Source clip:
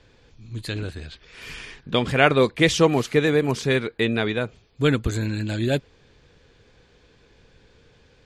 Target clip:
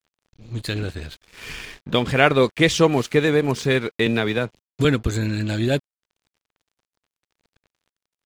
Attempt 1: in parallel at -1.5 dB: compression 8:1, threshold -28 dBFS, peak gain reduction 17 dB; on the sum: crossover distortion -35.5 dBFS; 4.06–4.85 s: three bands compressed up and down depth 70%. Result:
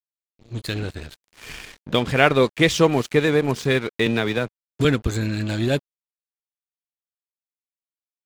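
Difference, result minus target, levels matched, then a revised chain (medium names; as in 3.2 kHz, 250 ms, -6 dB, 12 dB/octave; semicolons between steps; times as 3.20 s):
crossover distortion: distortion +5 dB
in parallel at -1.5 dB: compression 8:1, threshold -28 dBFS, peak gain reduction 17 dB; on the sum: crossover distortion -42 dBFS; 4.06–4.85 s: three bands compressed up and down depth 70%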